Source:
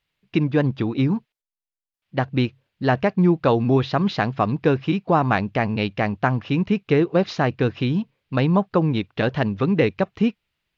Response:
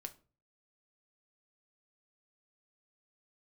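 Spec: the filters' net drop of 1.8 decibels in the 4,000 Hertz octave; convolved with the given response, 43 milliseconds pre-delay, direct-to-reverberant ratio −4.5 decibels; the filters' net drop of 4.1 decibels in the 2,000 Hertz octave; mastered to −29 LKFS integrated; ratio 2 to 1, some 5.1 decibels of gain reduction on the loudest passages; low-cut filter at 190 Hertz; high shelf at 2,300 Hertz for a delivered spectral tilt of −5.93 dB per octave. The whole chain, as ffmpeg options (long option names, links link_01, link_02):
-filter_complex "[0:a]highpass=190,equalizer=frequency=2000:width_type=o:gain=-8.5,highshelf=frequency=2300:gain=9,equalizer=frequency=4000:width_type=o:gain=-7,acompressor=threshold=-23dB:ratio=2,asplit=2[link_01][link_02];[1:a]atrim=start_sample=2205,adelay=43[link_03];[link_02][link_03]afir=irnorm=-1:irlink=0,volume=8.5dB[link_04];[link_01][link_04]amix=inputs=2:normalize=0,volume=-7.5dB"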